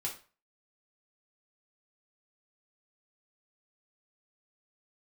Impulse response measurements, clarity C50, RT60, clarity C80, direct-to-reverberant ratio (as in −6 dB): 9.5 dB, 0.35 s, 15.0 dB, −3.0 dB